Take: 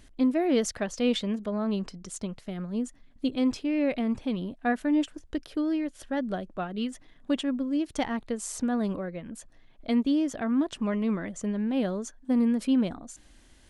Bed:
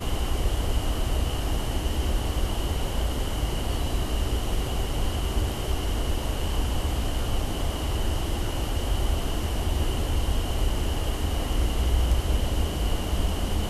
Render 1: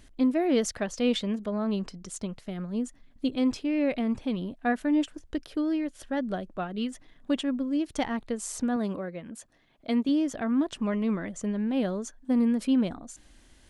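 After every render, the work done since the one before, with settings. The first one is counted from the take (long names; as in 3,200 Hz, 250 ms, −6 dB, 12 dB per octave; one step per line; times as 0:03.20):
0:08.76–0:10.09: high-pass filter 140 Hz 6 dB per octave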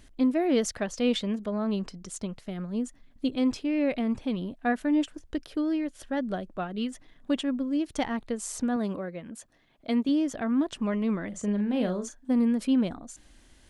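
0:11.28–0:12.31: double-tracking delay 39 ms −8 dB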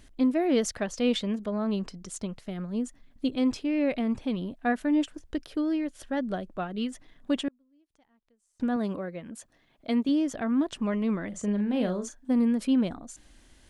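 0:07.48–0:08.60: gate with flip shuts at −34 dBFS, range −37 dB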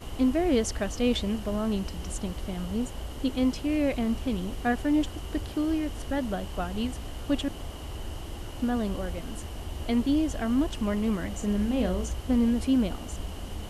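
mix in bed −10.5 dB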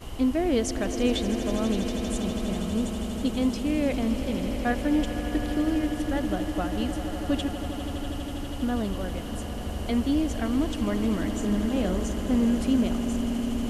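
echo that builds up and dies away 81 ms, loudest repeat 8, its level −14.5 dB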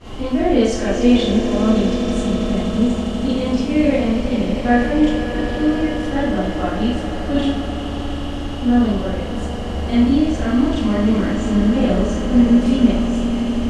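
high-frequency loss of the air 86 metres
four-comb reverb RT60 0.57 s, combs from 29 ms, DRR −9 dB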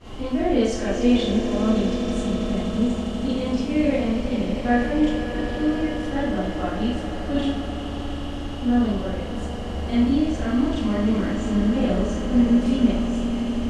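level −5 dB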